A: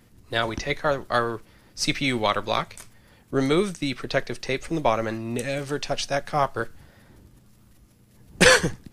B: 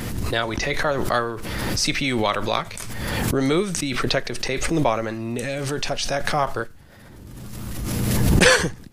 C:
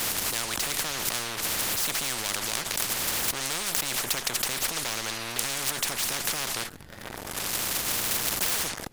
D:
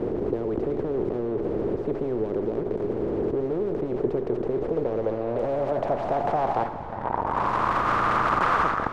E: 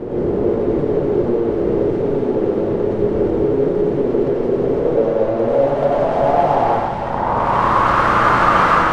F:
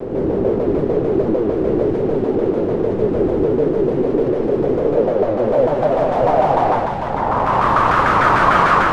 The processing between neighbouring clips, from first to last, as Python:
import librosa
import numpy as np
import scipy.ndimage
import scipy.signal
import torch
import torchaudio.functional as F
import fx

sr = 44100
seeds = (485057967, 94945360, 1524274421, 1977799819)

y1 = fx.pre_swell(x, sr, db_per_s=23.0)
y2 = fx.leveller(y1, sr, passes=3)
y2 = fx.spectral_comp(y2, sr, ratio=10.0)
y2 = F.gain(torch.from_numpy(y2), -5.5).numpy()
y3 = fx.rev_gated(y2, sr, seeds[0], gate_ms=440, shape='flat', drr_db=10.5)
y3 = fx.filter_sweep_lowpass(y3, sr, from_hz=410.0, to_hz=1200.0, start_s=4.47, end_s=7.92, q=4.5)
y3 = F.gain(torch.from_numpy(y3), 7.5).numpy()
y4 = fx.echo_wet_highpass(y3, sr, ms=334, feedback_pct=76, hz=2200.0, wet_db=-5.0)
y4 = fx.rev_plate(y4, sr, seeds[1], rt60_s=1.2, hf_ratio=0.8, predelay_ms=80, drr_db=-7.0)
y4 = F.gain(torch.from_numpy(y4), 1.5).numpy()
y5 = fx.vibrato_shape(y4, sr, shape='saw_down', rate_hz=6.7, depth_cents=250.0)